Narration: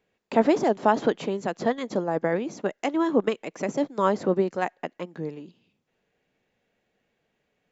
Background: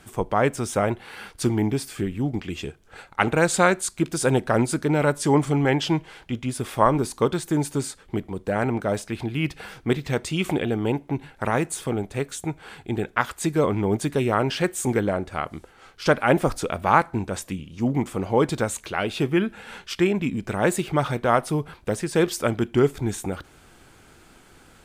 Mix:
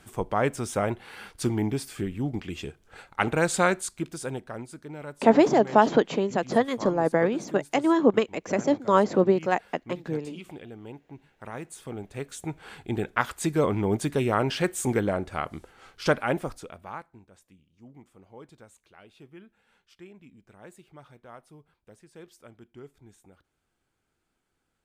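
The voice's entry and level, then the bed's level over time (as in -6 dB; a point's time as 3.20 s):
4.90 s, +2.5 dB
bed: 3.75 s -4 dB
4.65 s -18.5 dB
11.23 s -18.5 dB
12.72 s -2.5 dB
16.05 s -2.5 dB
17.24 s -27 dB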